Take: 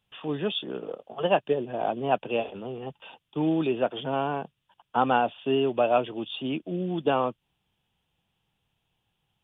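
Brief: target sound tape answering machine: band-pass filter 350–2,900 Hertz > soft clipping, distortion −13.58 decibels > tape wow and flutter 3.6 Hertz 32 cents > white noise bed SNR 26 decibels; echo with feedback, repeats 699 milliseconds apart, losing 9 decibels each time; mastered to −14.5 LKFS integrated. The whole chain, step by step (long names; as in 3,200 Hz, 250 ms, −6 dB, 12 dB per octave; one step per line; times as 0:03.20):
band-pass filter 350–2,900 Hz
repeating echo 699 ms, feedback 35%, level −9 dB
soft clipping −19 dBFS
tape wow and flutter 3.6 Hz 32 cents
white noise bed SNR 26 dB
level +17 dB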